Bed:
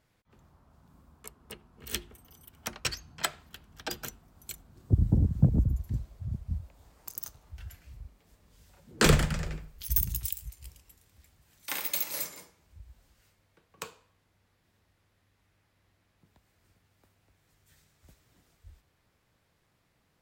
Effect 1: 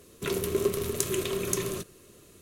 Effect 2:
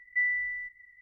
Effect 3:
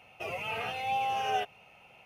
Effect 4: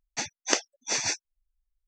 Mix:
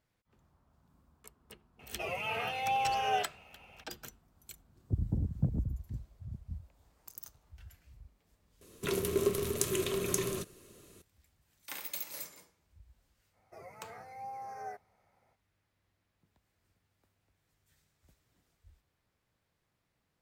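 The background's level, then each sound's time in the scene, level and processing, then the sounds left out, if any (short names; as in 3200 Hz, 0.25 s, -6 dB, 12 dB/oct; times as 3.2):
bed -8.5 dB
1.79 add 3 -0.5 dB
8.61 replace with 1 -3 dB
13.32 add 3 -12 dB, fades 0.05 s + Chebyshev band-stop 2100–4500 Hz, order 3
not used: 2, 4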